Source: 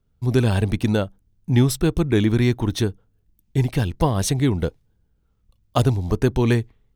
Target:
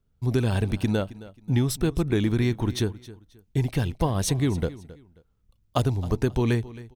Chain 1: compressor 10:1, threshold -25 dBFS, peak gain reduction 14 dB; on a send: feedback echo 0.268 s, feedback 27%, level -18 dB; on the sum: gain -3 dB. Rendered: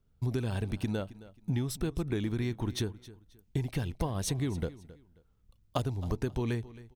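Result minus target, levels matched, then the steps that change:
compressor: peak gain reduction +9.5 dB
change: compressor 10:1, threshold -14.5 dBFS, peak gain reduction 4.5 dB

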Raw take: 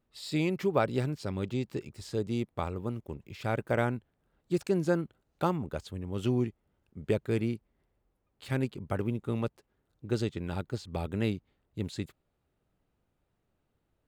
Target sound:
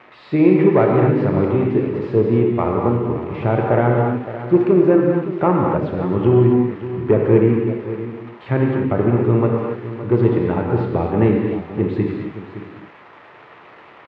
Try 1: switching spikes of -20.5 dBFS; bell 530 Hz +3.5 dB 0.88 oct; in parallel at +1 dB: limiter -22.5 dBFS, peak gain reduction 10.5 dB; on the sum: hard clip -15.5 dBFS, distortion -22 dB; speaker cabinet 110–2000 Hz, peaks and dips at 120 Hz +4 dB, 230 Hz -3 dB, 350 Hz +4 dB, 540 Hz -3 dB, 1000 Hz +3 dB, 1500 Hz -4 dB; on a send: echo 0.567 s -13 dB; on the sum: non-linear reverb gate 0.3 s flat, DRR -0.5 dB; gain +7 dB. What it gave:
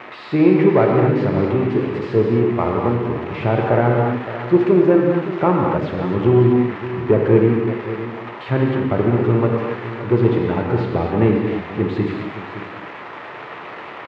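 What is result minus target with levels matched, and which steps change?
switching spikes: distortion +11 dB
change: switching spikes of -32 dBFS

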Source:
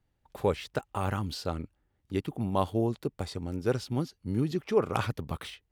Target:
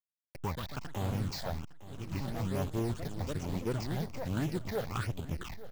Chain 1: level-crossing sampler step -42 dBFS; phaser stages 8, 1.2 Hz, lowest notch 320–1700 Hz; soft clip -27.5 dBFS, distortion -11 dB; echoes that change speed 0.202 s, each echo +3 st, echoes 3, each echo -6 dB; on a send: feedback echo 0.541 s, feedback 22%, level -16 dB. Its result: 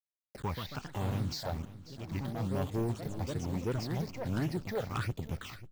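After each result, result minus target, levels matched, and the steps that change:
echo 0.318 s early; level-crossing sampler: distortion -8 dB
change: feedback echo 0.859 s, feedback 22%, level -16 dB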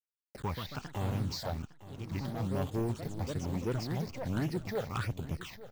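level-crossing sampler: distortion -8 dB
change: level-crossing sampler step -33.5 dBFS

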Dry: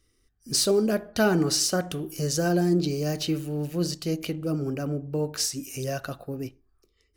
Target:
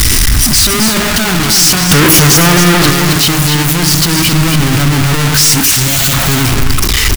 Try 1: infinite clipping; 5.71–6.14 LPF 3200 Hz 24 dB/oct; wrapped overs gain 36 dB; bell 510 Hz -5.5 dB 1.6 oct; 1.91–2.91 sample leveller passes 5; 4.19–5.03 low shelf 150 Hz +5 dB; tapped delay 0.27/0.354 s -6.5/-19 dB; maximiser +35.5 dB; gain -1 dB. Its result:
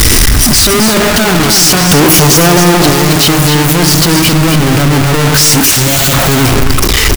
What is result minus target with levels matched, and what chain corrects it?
500 Hz band +4.5 dB
infinite clipping; 5.71–6.14 LPF 3200 Hz 24 dB/oct; wrapped overs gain 36 dB; bell 510 Hz -14 dB 1.6 oct; 1.91–2.91 sample leveller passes 5; 4.19–5.03 low shelf 150 Hz +5 dB; tapped delay 0.27/0.354 s -6.5/-19 dB; maximiser +35.5 dB; gain -1 dB

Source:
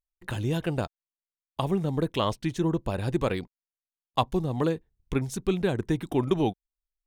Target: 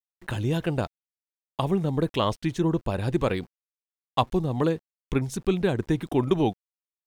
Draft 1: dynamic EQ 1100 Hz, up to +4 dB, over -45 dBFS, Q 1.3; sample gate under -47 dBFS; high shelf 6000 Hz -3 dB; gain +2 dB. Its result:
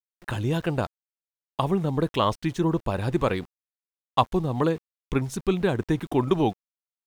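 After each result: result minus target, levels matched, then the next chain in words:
sample gate: distortion +7 dB; 1000 Hz band +2.5 dB
dynamic EQ 1100 Hz, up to +4 dB, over -45 dBFS, Q 1.3; sample gate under -54 dBFS; high shelf 6000 Hz -3 dB; gain +2 dB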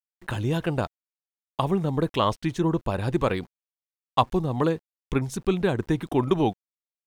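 1000 Hz band +2.5 dB
sample gate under -54 dBFS; high shelf 6000 Hz -3 dB; gain +2 dB

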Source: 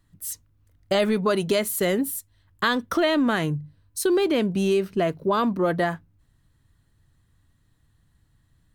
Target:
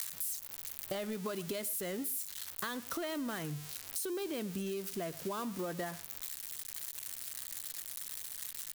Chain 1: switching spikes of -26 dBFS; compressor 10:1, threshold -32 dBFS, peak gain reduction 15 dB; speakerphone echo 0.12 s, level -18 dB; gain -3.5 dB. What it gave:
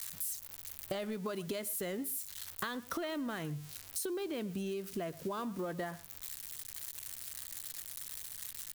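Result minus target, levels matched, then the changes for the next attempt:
switching spikes: distortion -8 dB
change: switching spikes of -17.5 dBFS

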